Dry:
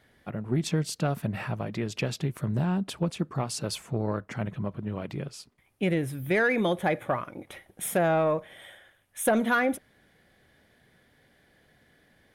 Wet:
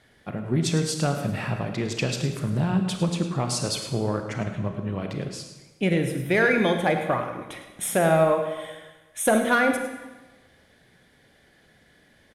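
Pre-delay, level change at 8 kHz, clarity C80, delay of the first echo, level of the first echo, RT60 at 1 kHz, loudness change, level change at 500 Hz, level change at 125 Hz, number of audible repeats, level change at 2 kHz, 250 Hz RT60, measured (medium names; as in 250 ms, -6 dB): 27 ms, +6.0 dB, 7.5 dB, 105 ms, -13.5 dB, 1.2 s, +4.0 dB, +4.5 dB, +4.0 dB, 1, +4.5 dB, 1.2 s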